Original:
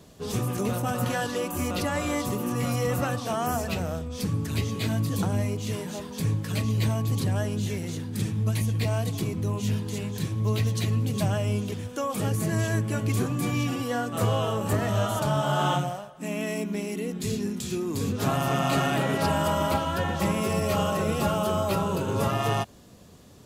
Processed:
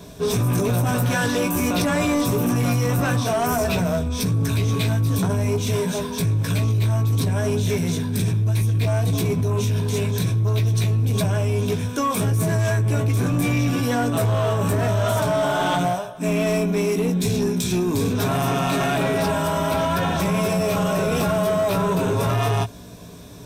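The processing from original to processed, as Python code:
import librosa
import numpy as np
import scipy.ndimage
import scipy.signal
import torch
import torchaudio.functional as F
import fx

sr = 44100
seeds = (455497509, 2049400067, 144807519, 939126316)

p1 = fx.ripple_eq(x, sr, per_octave=1.6, db=8)
p2 = fx.over_compress(p1, sr, threshold_db=-28.0, ratio=-1.0)
p3 = p1 + (p2 * 10.0 ** (2.0 / 20.0))
p4 = fx.doubler(p3, sr, ms=17.0, db=-7)
y = 10.0 ** (-14.5 / 20.0) * np.tanh(p4 / 10.0 ** (-14.5 / 20.0))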